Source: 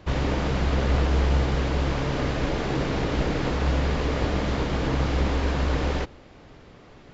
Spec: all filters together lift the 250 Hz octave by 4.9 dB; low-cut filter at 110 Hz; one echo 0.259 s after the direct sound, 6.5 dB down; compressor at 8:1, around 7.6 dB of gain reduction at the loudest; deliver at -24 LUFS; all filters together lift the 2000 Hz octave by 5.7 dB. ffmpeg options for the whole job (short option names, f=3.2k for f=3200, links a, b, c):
-af "highpass=110,equalizer=f=250:t=o:g=6.5,equalizer=f=2k:t=o:g=7,acompressor=threshold=-27dB:ratio=8,aecho=1:1:259:0.473,volume=6dB"